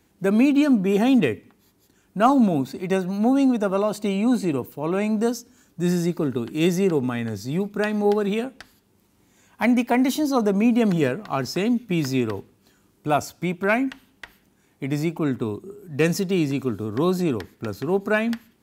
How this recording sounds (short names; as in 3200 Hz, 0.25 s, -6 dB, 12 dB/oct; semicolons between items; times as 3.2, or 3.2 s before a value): noise floor -62 dBFS; spectral tilt -6.0 dB/oct